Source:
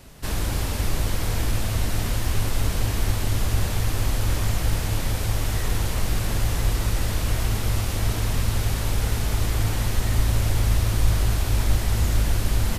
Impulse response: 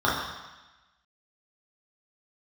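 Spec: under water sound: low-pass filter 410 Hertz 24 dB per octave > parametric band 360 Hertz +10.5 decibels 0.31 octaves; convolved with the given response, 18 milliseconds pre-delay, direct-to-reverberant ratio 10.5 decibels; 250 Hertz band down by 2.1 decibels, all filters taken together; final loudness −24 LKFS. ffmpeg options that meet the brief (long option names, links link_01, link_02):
-filter_complex "[0:a]equalizer=frequency=250:width_type=o:gain=-6.5,asplit=2[link_01][link_02];[1:a]atrim=start_sample=2205,adelay=18[link_03];[link_02][link_03]afir=irnorm=-1:irlink=0,volume=-28dB[link_04];[link_01][link_04]amix=inputs=2:normalize=0,lowpass=frequency=410:width=0.5412,lowpass=frequency=410:width=1.3066,equalizer=frequency=360:width_type=o:width=0.31:gain=10.5,volume=3dB"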